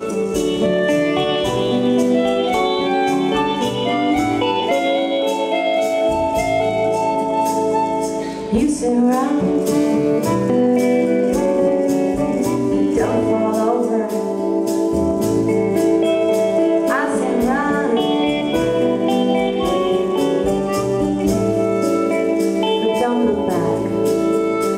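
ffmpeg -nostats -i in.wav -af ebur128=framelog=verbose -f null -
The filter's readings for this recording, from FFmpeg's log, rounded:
Integrated loudness:
  I:         -17.5 LUFS
  Threshold: -27.5 LUFS
Loudness range:
  LRA:         1.3 LU
  Threshold: -37.5 LUFS
  LRA low:   -18.0 LUFS
  LRA high:  -16.8 LUFS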